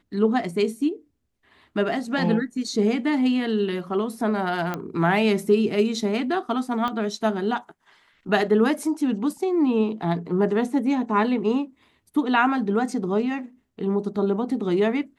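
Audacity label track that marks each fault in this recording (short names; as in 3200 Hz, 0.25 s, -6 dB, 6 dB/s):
4.740000	4.740000	pop -14 dBFS
6.880000	6.880000	pop -16 dBFS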